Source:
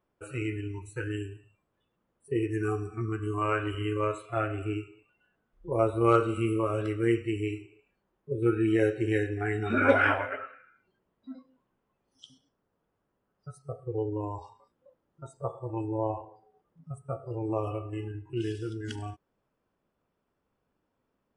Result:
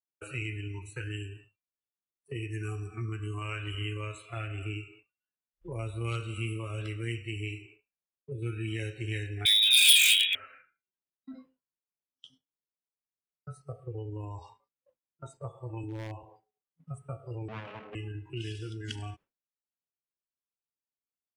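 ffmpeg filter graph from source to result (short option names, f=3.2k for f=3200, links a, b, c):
-filter_complex "[0:a]asettb=1/sr,asplit=3[a][b][c];[a]atrim=end=9.454[d];[b]atrim=start=9.45:end=10.35,asetpts=PTS-STARTPTS,afade=t=in:d=0.004:c=qsin,afade=t=out:st=0.896:d=0.004:c=qsin,lowpass=f=3.3k:t=q:w=0.5098,lowpass=f=3.3k:t=q:w=0.6013,lowpass=f=3.3k:t=q:w=0.9,lowpass=f=3.3k:t=q:w=2.563,afreqshift=-3900,volume=24.5dB,asoftclip=hard,volume=-24.5dB,aemphasis=mode=production:type=75kf[e];[c]atrim=start=10.346[f];[d][e]acrossfade=d=0.004:c1=hsin:c2=qsin[g];[g][f]acrossfade=d=0.004:c1=qsin:c2=hsin,asettb=1/sr,asplit=3[h][i][j];[h]atrim=end=11.314[k];[i]atrim=start=11.31:end=13.61,asetpts=PTS-STARTPTS,afade=t=in:d=0.004:c=qsin,afade=t=out:st=2.296:d=0.004:c=qsin,equalizer=f=5.4k:w=0.7:g=-5,asplit=2[l][m];[m]adelay=23,volume=-8dB[n];[l][n]amix=inputs=2:normalize=0,atrim=end_sample=101430[o];[j]atrim=start=13.606[p];[k][o]acrossfade=d=0.004:c1=hsin:c2=qsin[q];[q][p]acrossfade=d=0.004:c1=qsin:c2=hsin,asettb=1/sr,asplit=3[r][s][t];[r]atrim=end=15.834[u];[s]atrim=start=15.83:end=16.23,asetpts=PTS-STARTPTS,afade=t=in:d=0.004:c=qsin,afade=t=out:st=0.396:d=0.004:c=qsin,highpass=f=90:w=0.5412,highpass=f=90:w=1.3066,equalizer=f=280:w=5.2:g=11,asoftclip=type=hard:threshold=-23.5dB[v];[t]atrim=start=16.226[w];[u][v]acrossfade=d=0.004:c1=hsin:c2=qsin[x];[x][w]acrossfade=d=0.004:c1=qsin:c2=hsin,asettb=1/sr,asplit=3[y][z][aa];[y]atrim=end=17.484[ab];[z]atrim=start=17.48:end=17.95,asetpts=PTS-STARTPTS,afade=t=in:d=0.004:c=qsin,afade=t=out:st=0.466:d=0.004:c=qsin,aeval=exprs='abs(val(0))':c=same,highpass=120,lowpass=2.6k[ac];[aa]atrim=start=17.946[ad];[ab][ac]acrossfade=d=0.004:c1=hsin:c2=qsin[ae];[ae][ad]acrossfade=d=0.004:c1=qsin:c2=hsin,agate=range=-33dB:threshold=-48dB:ratio=3:detection=peak,equalizer=f=2.5k:w=1.2:g=9.5,acrossover=split=160|3000[af][ag][ah];[ag]acompressor=threshold=-42dB:ratio=5[ai];[af][ai][ah]amix=inputs=3:normalize=0"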